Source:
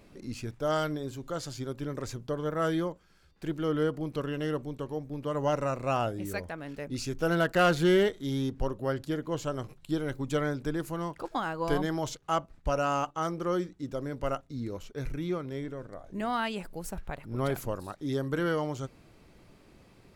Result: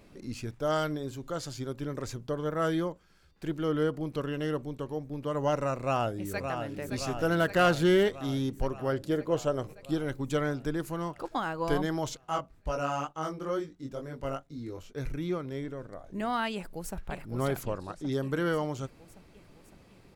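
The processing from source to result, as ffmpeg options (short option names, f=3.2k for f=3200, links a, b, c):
-filter_complex "[0:a]asplit=2[a][b];[b]afade=t=in:st=5.79:d=0.01,afade=t=out:st=6.69:d=0.01,aecho=0:1:570|1140|1710|2280|2850|3420|3990|4560|5130|5700|6270:0.473151|0.331206|0.231844|0.162291|0.113604|0.0795225|0.0556658|0.038966|0.0272762|0.0190934|0.0133654[c];[a][c]amix=inputs=2:normalize=0,asettb=1/sr,asplit=3[d][e][f];[d]atrim=end=8.924[g];[e]atrim=start=8.92:end=9.91,asetpts=PTS-STARTPTS,afade=t=in:d=0.004:c=qsin,afade=t=out:st=0.986:d=0.004:c=qsin,equalizer=f=520:w=1.5:g=6.5[h];[f]atrim=start=9.906[i];[g][h]acrossfade=d=0.004:c1=hsin:c2=qsin[j];[j][i]acrossfade=d=0.004:c1=qsin:c2=hsin,asplit=3[k][l][m];[k]afade=t=out:st=12.24:d=0.02[n];[l]flanger=delay=19:depth=3.6:speed=2.2,afade=t=in:st=12.24:d=0.02,afade=t=out:st=14.92:d=0.02[o];[m]afade=t=in:st=14.92:d=0.02[p];[n][o][p]amix=inputs=3:normalize=0,asplit=2[q][r];[r]afade=t=in:st=16.54:d=0.01,afade=t=out:st=16.97:d=0.01,aecho=0:1:560|1120|1680|2240|2800|3360|3920|4480|5040:0.473151|0.307548|0.199906|0.129939|0.0844605|0.0548993|0.0356845|0.023195|0.0150767[s];[q][s]amix=inputs=2:normalize=0,asettb=1/sr,asplit=3[t][u][v];[t]atrim=end=17.634[w];[u]atrim=start=17.63:end=18.12,asetpts=PTS-STARTPTS,afade=t=in:d=0.004:c=qsin,afade=t=out:st=0.486:d=0.004:c=qsin,lowpass=6.4k[x];[v]atrim=start=18.116[y];[w][x]acrossfade=d=0.004:c1=hsin:c2=qsin[z];[z][y]acrossfade=d=0.004:c1=qsin:c2=hsin"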